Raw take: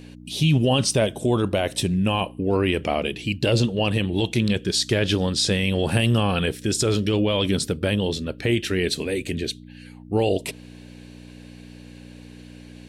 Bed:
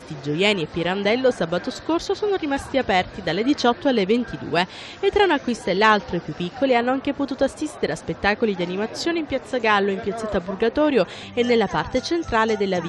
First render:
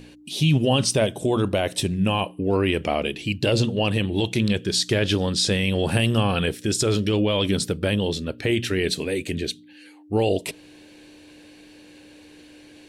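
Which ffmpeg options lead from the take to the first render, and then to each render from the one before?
-af "bandreject=f=60:t=h:w=4,bandreject=f=120:t=h:w=4,bandreject=f=180:t=h:w=4,bandreject=f=240:t=h:w=4"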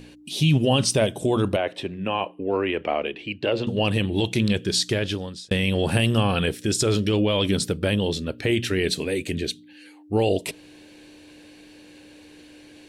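-filter_complex "[0:a]asettb=1/sr,asplit=3[s0][s1][s2];[s0]atrim=end=1.564[s3];[s1]atrim=start=1.56:end=3.67,asetpts=PTS-STARTPTS,afade=t=in:d=0.004:c=qsin,afade=t=out:st=2.106:d=0.004:c=qsin,acrossover=split=290 3200:gain=0.224 1 0.0708[s4][s5][s6];[s4][s5][s6]amix=inputs=3:normalize=0[s7];[s2]atrim=start=3.666[s8];[s3][s7]acrossfade=d=0.004:c1=hsin:c2=qsin[s9];[s9][s8]acrossfade=d=0.004:c1=qsin:c2=hsin,asplit=2[s10][s11];[s10]atrim=end=5.51,asetpts=PTS-STARTPTS,afade=t=out:st=4.77:d=0.74[s12];[s11]atrim=start=5.51,asetpts=PTS-STARTPTS,afade=t=in:d=0.004:c=hsin[s13];[s12][s13]concat=n=2:v=0:a=1"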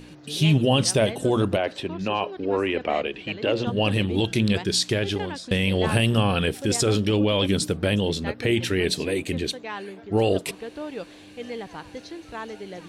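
-filter_complex "[1:a]volume=0.158[s0];[0:a][s0]amix=inputs=2:normalize=0"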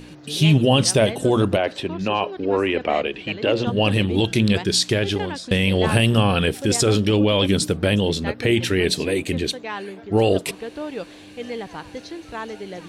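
-af "volume=1.5"

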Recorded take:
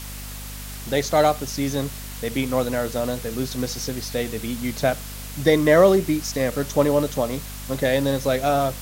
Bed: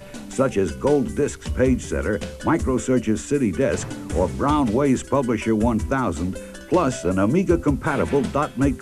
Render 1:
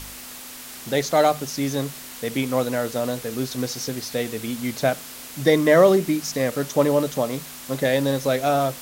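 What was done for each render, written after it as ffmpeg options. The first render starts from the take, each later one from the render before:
-af "bandreject=f=50:t=h:w=4,bandreject=f=100:t=h:w=4,bandreject=f=150:t=h:w=4,bandreject=f=200:t=h:w=4"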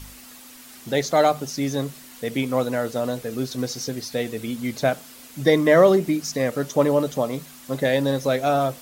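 -af "afftdn=nr=8:nf=-39"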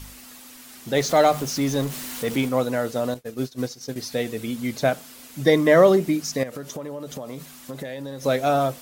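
-filter_complex "[0:a]asettb=1/sr,asplit=3[s0][s1][s2];[s0]atrim=end=0.964[s3];[s1]atrim=start=0.96:end=2.49,asetpts=PTS-STARTPTS,afade=t=in:d=0.004:c=qsin,afade=t=out:st=1.526:d=0.004:c=qsin,aeval=exprs='val(0)+0.5*0.0299*sgn(val(0))':c=same[s4];[s2]atrim=start=2.486[s5];[s3][s4]acrossfade=d=0.004:c1=hsin:c2=qsin[s6];[s6][s5]acrossfade=d=0.004:c1=qsin:c2=hsin,asettb=1/sr,asplit=3[s7][s8][s9];[s7]atrim=end=3.144[s10];[s8]atrim=start=3.14:end=3.96,asetpts=PTS-STARTPTS,afade=t=in:d=0.004:c=qsin,afade=t=out:st=0.816:d=0.004:c=qsin,agate=range=0.0224:threshold=0.0562:ratio=3:release=100:detection=peak[s11];[s9]atrim=start=3.956[s12];[s10][s11]acrossfade=d=0.004:c1=hsin:c2=qsin[s13];[s13][s12]acrossfade=d=0.004:c1=qsin:c2=hsin,asettb=1/sr,asplit=3[s14][s15][s16];[s14]atrim=end=6.434[s17];[s15]atrim=start=6.43:end=8.24,asetpts=PTS-STARTPTS,afade=t=in:d=0.004:c=qsin,afade=t=out:st=1.806:d=0.004:c=qsin,acompressor=threshold=0.0355:ratio=10:attack=3.2:release=140:knee=1:detection=peak[s18];[s16]atrim=start=8.236[s19];[s17][s18]acrossfade=d=0.004:c1=hsin:c2=qsin[s20];[s20][s19]acrossfade=d=0.004:c1=qsin:c2=hsin"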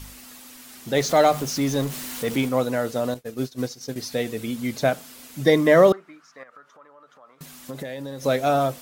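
-filter_complex "[0:a]asettb=1/sr,asplit=3[s0][s1][s2];[s0]atrim=end=5.924[s3];[s1]atrim=start=5.92:end=7.41,asetpts=PTS-STARTPTS,afade=t=in:d=0.004:c=qsin,afade=t=out:st=1.486:d=0.004:c=qsin,bandpass=f=1300:t=q:w=4.3[s4];[s2]atrim=start=7.406[s5];[s3][s4]acrossfade=d=0.004:c1=hsin:c2=qsin[s6];[s6][s5]acrossfade=d=0.004:c1=qsin:c2=hsin"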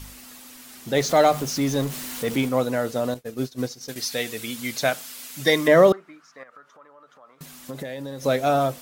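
-filter_complex "[0:a]asettb=1/sr,asplit=3[s0][s1][s2];[s0]atrim=end=3.884[s3];[s1]atrim=start=3.88:end=5.68,asetpts=PTS-STARTPTS,afade=t=in:d=0.004:c=qsin,afade=t=out:st=1.796:d=0.004:c=qsin,tiltshelf=f=920:g=-6.5[s4];[s2]atrim=start=5.676[s5];[s3][s4]acrossfade=d=0.004:c1=hsin:c2=qsin[s6];[s6][s5]acrossfade=d=0.004:c1=qsin:c2=hsin"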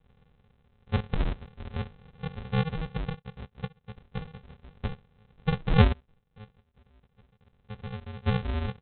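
-filter_complex "[0:a]asplit=3[s0][s1][s2];[s0]bandpass=f=530:t=q:w=8,volume=1[s3];[s1]bandpass=f=1840:t=q:w=8,volume=0.501[s4];[s2]bandpass=f=2480:t=q:w=8,volume=0.355[s5];[s3][s4][s5]amix=inputs=3:normalize=0,aresample=8000,acrusher=samples=25:mix=1:aa=0.000001,aresample=44100"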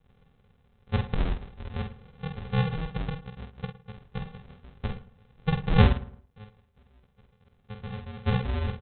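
-filter_complex "[0:a]asplit=2[s0][s1];[s1]adelay=48,volume=0.473[s2];[s0][s2]amix=inputs=2:normalize=0,asplit=2[s3][s4];[s4]adelay=110,lowpass=f=1700:p=1,volume=0.15,asplit=2[s5][s6];[s6]adelay=110,lowpass=f=1700:p=1,volume=0.33,asplit=2[s7][s8];[s8]adelay=110,lowpass=f=1700:p=1,volume=0.33[s9];[s3][s5][s7][s9]amix=inputs=4:normalize=0"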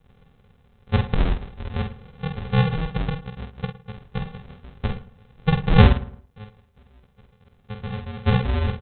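-af "volume=2.11,alimiter=limit=0.708:level=0:latency=1"

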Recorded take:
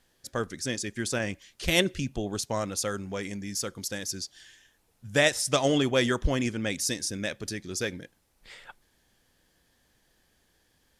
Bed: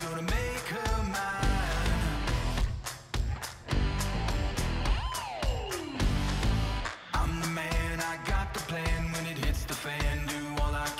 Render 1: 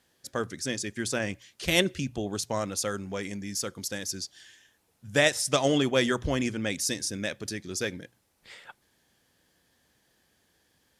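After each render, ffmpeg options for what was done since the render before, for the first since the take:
-af "highpass=70,bandreject=f=60:t=h:w=6,bandreject=f=120:t=h:w=6"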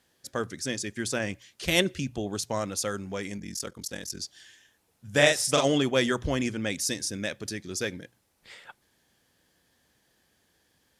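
-filter_complex "[0:a]asettb=1/sr,asplit=3[s0][s1][s2];[s0]atrim=end=3.384[s3];[s1]atrim=start=3.38:end=4.21,asetpts=PTS-STARTPTS,afade=t=in:d=0.004:c=qsin,afade=t=out:st=0.826:d=0.004:c=qsin,aeval=exprs='val(0)*sin(2*PI*21*n/s)':c=same[s4];[s2]atrim=start=4.206[s5];[s3][s4]acrossfade=d=0.004:c1=hsin:c2=qsin[s6];[s6][s5]acrossfade=d=0.004:c1=qsin:c2=hsin,asettb=1/sr,asplit=3[s7][s8][s9];[s7]atrim=end=5.104[s10];[s8]atrim=start=5.1:end=5.65,asetpts=PTS-STARTPTS,afade=t=in:d=0.004:c=qsin,afade=t=out:st=0.546:d=0.004:c=qsin,asplit=2[s11][s12];[s12]adelay=41,volume=0.708[s13];[s11][s13]amix=inputs=2:normalize=0,atrim=end_sample=24255[s14];[s9]atrim=start=5.646[s15];[s10][s14]acrossfade=d=0.004:c1=hsin:c2=qsin[s16];[s16][s15]acrossfade=d=0.004:c1=qsin:c2=hsin"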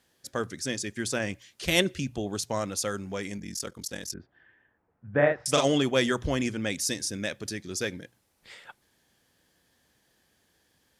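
-filter_complex "[0:a]asettb=1/sr,asplit=3[s0][s1][s2];[s0]atrim=end=4.144[s3];[s1]atrim=start=4.14:end=5.46,asetpts=PTS-STARTPTS,afade=t=in:d=0.004:c=qsin,afade=t=out:st=1.316:d=0.004:c=qsin,lowpass=f=1700:w=0.5412,lowpass=f=1700:w=1.3066[s4];[s2]atrim=start=5.456[s5];[s3][s4]acrossfade=d=0.004:c1=hsin:c2=qsin[s6];[s6][s5]acrossfade=d=0.004:c1=qsin:c2=hsin"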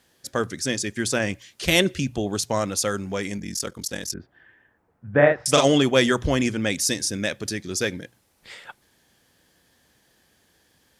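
-af "volume=2,alimiter=limit=0.708:level=0:latency=1"

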